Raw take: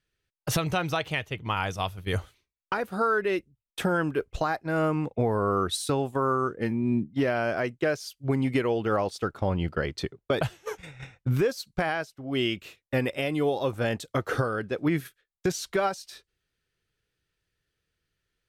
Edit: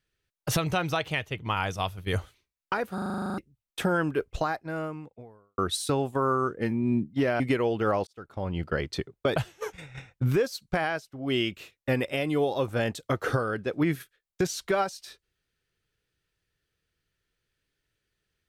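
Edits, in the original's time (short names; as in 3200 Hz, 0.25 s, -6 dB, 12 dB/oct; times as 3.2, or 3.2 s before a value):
2.94 stutter in place 0.04 s, 11 plays
4.39–5.58 fade out quadratic
7.4–8.45 cut
9.12–9.81 fade in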